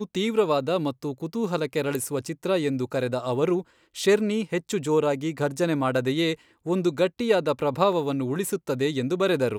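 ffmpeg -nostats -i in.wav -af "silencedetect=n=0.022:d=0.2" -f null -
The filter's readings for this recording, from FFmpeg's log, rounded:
silence_start: 3.61
silence_end: 3.96 | silence_duration: 0.35
silence_start: 6.34
silence_end: 6.66 | silence_duration: 0.32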